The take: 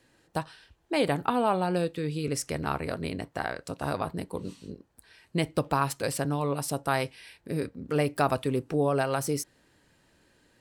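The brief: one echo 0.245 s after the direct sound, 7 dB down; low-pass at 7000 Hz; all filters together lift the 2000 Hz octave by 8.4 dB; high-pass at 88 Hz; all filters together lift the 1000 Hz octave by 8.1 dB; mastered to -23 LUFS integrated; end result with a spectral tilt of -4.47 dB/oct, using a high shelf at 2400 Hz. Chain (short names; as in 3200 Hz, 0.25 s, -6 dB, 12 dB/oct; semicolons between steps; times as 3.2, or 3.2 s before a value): HPF 88 Hz; LPF 7000 Hz; bell 1000 Hz +8 dB; bell 2000 Hz +5 dB; high shelf 2400 Hz +6.5 dB; echo 0.245 s -7 dB; gain +1.5 dB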